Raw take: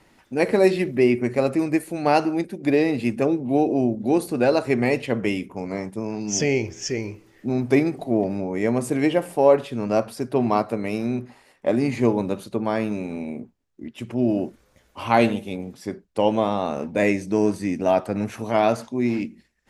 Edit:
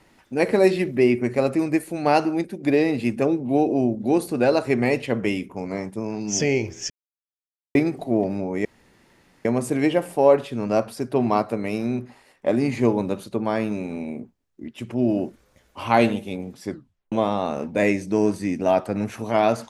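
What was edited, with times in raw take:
0:06.90–0:07.75: silence
0:08.65: splice in room tone 0.80 s
0:15.90: tape stop 0.42 s

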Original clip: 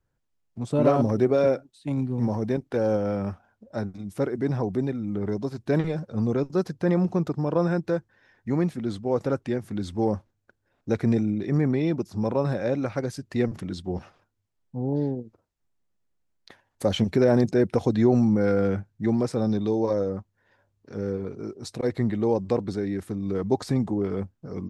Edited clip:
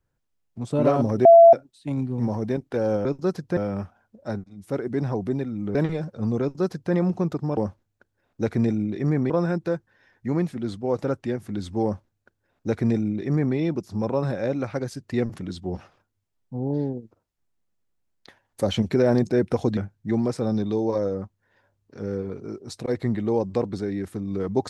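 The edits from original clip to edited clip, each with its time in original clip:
0:01.25–0:01.53: beep over 673 Hz −6.5 dBFS
0:03.92–0:04.31: fade in, from −14.5 dB
0:05.23–0:05.70: remove
0:06.36–0:06.88: duplicate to 0:03.05
0:10.05–0:11.78: duplicate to 0:07.52
0:17.99–0:18.72: remove

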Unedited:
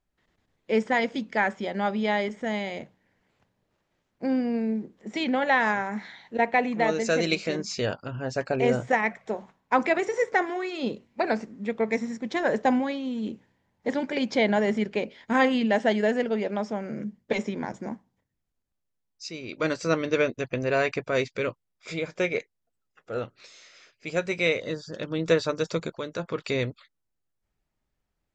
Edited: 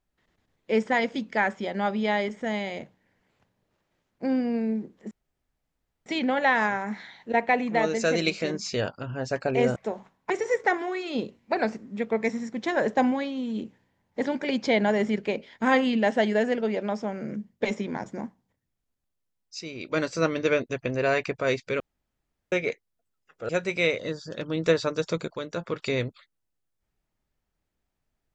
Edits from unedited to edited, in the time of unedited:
0:05.11: splice in room tone 0.95 s
0:08.81–0:09.19: remove
0:09.73–0:09.98: remove
0:21.48–0:22.20: fill with room tone
0:23.17–0:24.11: remove

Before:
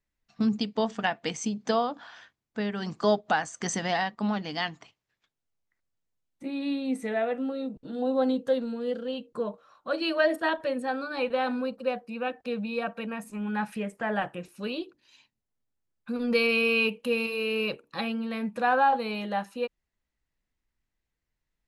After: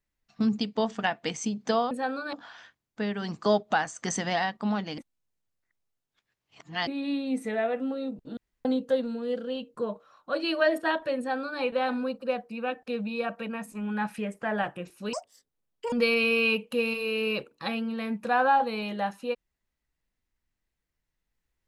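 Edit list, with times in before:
0:04.56–0:06.45: reverse
0:07.95–0:08.23: fill with room tone
0:10.76–0:11.18: duplicate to 0:01.91
0:14.71–0:16.25: play speed 194%

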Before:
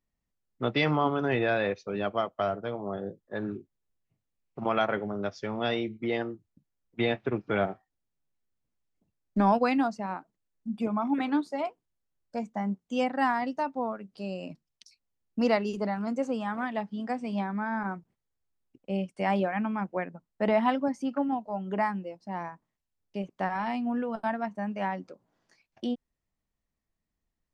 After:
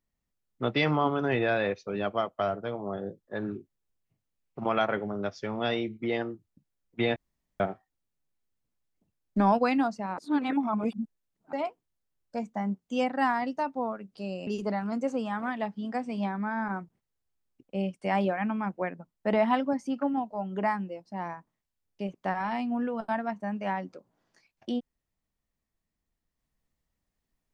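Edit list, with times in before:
0:07.16–0:07.60: fill with room tone
0:10.18–0:11.53: reverse
0:14.47–0:15.62: remove

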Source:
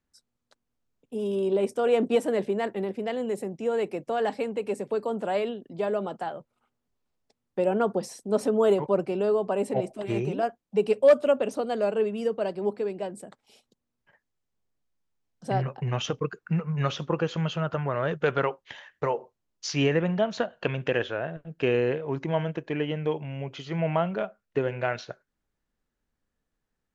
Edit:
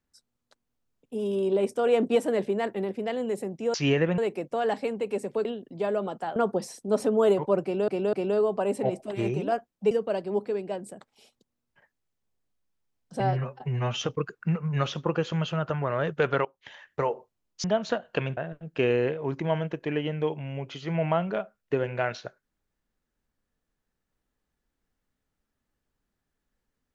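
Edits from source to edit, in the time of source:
0:05.01–0:05.44: remove
0:06.35–0:07.77: remove
0:09.04–0:09.29: repeat, 3 plays
0:10.82–0:12.22: remove
0:15.51–0:16.05: time-stretch 1.5×
0:18.49–0:18.89: fade in, from −20.5 dB
0:19.68–0:20.12: move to 0:03.74
0:20.85–0:21.21: remove

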